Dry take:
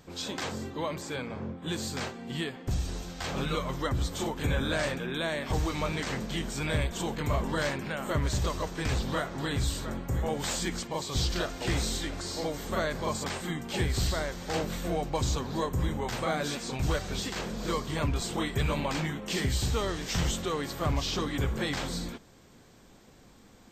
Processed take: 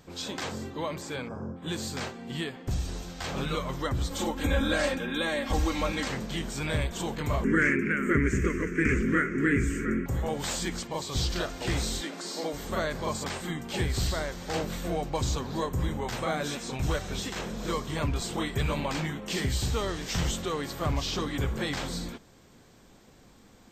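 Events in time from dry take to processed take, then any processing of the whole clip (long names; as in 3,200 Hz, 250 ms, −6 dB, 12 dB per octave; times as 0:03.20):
0:01.28–0:01.56: gain on a spectral selection 1,700–4,800 Hz −20 dB
0:04.10–0:06.08: comb filter 3.7 ms, depth 88%
0:07.44–0:10.06: drawn EQ curve 130 Hz 0 dB, 220 Hz +10 dB, 410 Hz +11 dB, 760 Hz −28 dB, 1,400 Hz +8 dB, 2,200 Hz +13 dB, 3,900 Hz −26 dB, 6,500 Hz −2 dB, 12,000 Hz −9 dB
0:12.01–0:12.53: Butterworth high-pass 180 Hz
0:16.16–0:17.96: notch filter 4,600 Hz, Q 11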